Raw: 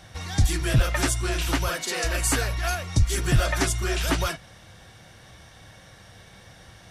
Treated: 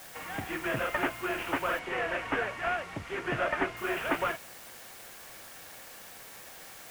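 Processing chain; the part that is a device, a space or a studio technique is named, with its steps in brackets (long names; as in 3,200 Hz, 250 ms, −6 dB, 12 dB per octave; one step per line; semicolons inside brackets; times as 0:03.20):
army field radio (band-pass filter 370–2,800 Hz; variable-slope delta modulation 16 kbit/s; white noise bed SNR 15 dB)
0:01.79–0:03.77: high-frequency loss of the air 62 metres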